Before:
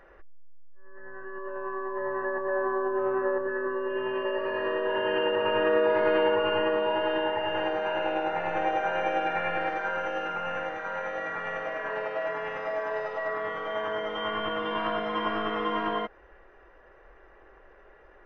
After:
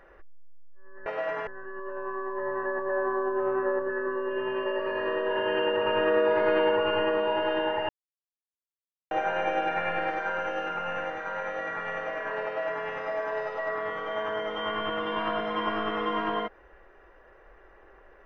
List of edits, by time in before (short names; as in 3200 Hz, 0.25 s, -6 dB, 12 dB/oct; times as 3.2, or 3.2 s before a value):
7.48–8.7 mute
12.04–12.45 copy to 1.06